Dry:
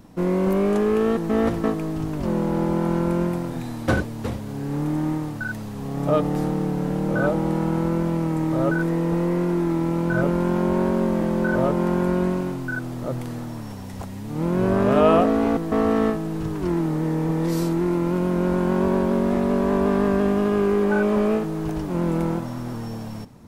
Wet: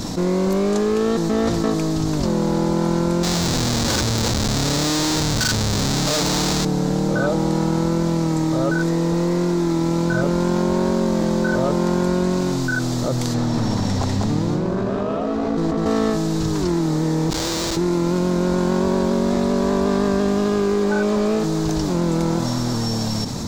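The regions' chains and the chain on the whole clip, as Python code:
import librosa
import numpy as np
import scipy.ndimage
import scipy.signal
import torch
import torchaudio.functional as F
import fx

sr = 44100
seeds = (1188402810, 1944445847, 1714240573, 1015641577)

y = fx.chain(x, sr, fx.peak_eq(hz=900.0, db=7.5, octaves=0.27),
    fx.schmitt(flips_db=-31.0), at=(3.23, 6.65))
y = fx.chain(y, sr, fx.lowpass(hz=2300.0, slope=6),
    fx.over_compress(threshold_db=-29.0, ratio=-1.0),
    fx.echo_single(ms=197, db=-3.0), at=(13.34, 15.86))
y = fx.chain(y, sr, fx.bandpass_edges(low_hz=740.0, high_hz=3600.0),
    fx.schmitt(flips_db=-33.5), at=(17.3, 17.77))
y = fx.band_shelf(y, sr, hz=5300.0, db=12.5, octaves=1.3)
y = fx.env_flatten(y, sr, amount_pct=70)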